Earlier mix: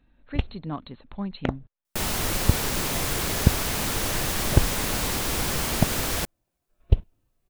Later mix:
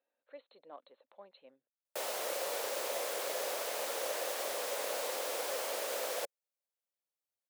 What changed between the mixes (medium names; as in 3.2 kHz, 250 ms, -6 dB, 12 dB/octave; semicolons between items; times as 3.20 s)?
speech -7.0 dB; first sound: muted; master: add ladder high-pass 490 Hz, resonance 70%